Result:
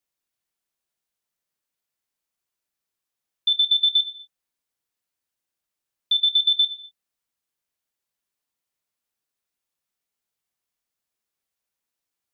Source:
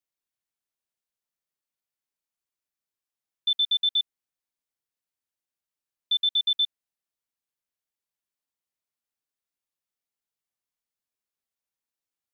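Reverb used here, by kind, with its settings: non-linear reverb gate 0.27 s falling, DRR 10 dB; gain +5 dB

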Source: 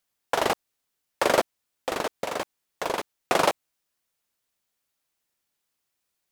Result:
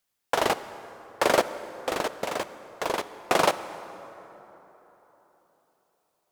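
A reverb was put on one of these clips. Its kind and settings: plate-style reverb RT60 3.9 s, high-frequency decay 0.5×, DRR 12.5 dB

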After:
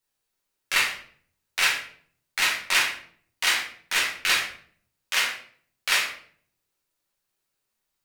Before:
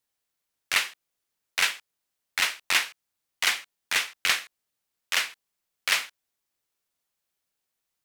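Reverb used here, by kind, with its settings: shoebox room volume 71 m³, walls mixed, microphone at 1.1 m; gain -2 dB

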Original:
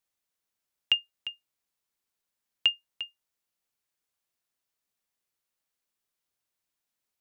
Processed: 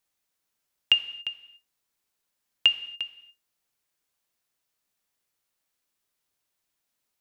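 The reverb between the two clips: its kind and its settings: non-linear reverb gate 0.31 s falling, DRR 10.5 dB; gain +4.5 dB

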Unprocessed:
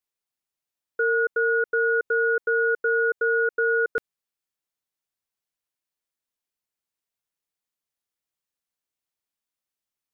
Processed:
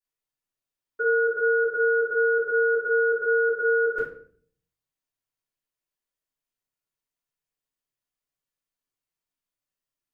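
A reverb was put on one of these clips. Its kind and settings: shoebox room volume 62 m³, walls mixed, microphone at 3.2 m; gain -15 dB

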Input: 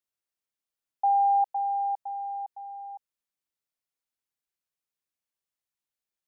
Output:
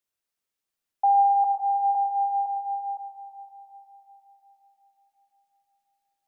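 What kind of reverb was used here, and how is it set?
digital reverb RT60 4.4 s, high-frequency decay 0.9×, pre-delay 15 ms, DRR 3 dB; gain +3 dB

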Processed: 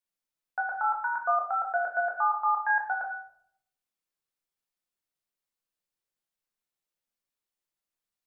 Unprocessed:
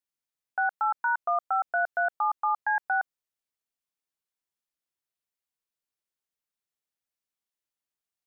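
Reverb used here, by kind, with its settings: shoebox room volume 130 m³, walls mixed, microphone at 0.91 m; gain -2.5 dB

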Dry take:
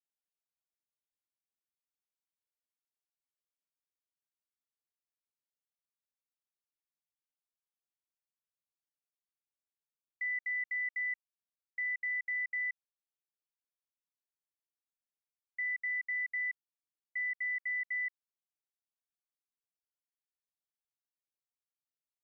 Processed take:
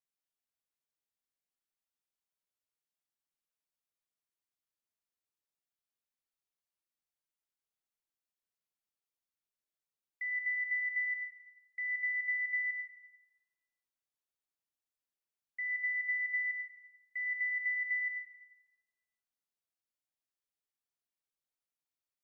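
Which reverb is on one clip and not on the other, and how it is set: digital reverb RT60 1.2 s, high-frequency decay 0.6×, pre-delay 60 ms, DRR 5 dB; gain -2 dB

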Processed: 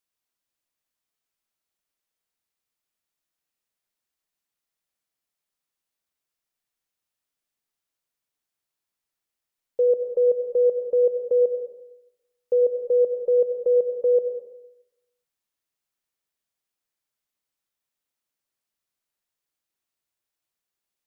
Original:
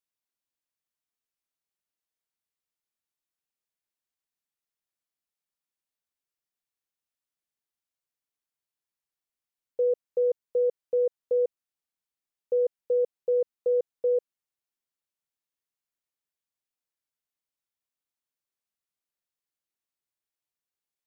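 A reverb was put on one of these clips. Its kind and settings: digital reverb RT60 0.88 s, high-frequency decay 0.75×, pre-delay 55 ms, DRR 6 dB; gain +4.5 dB

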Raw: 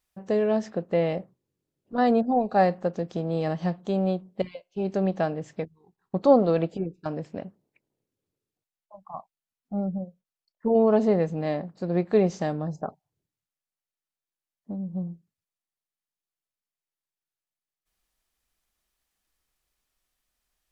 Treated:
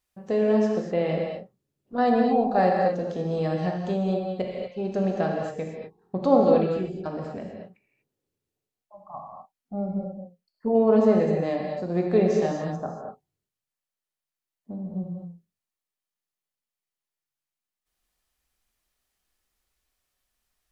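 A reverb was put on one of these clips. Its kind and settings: non-linear reverb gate 0.27 s flat, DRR -0.5 dB; gain -2 dB

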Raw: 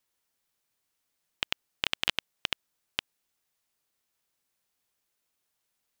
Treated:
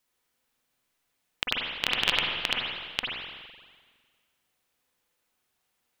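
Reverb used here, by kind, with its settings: spring tank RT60 1.6 s, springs 42/46/50 ms, chirp 35 ms, DRR -3 dB; gain +1.5 dB

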